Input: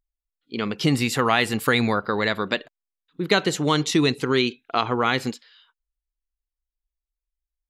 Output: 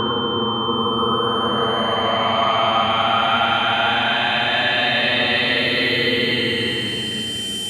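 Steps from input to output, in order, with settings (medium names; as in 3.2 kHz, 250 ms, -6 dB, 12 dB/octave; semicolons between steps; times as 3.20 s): Paulstretch 32×, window 0.05 s, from 1.23 s; whistle 3.1 kHz -24 dBFS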